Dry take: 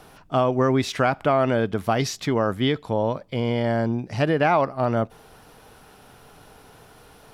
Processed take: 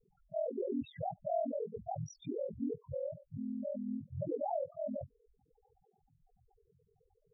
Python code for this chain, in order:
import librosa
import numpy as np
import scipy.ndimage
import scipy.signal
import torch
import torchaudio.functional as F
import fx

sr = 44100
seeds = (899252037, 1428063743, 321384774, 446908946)

y = fx.spec_topn(x, sr, count=1)
y = y * np.sin(2.0 * np.pi * 21.0 * np.arange(len(y)) / sr)
y = y * librosa.db_to_amplitude(-4.5)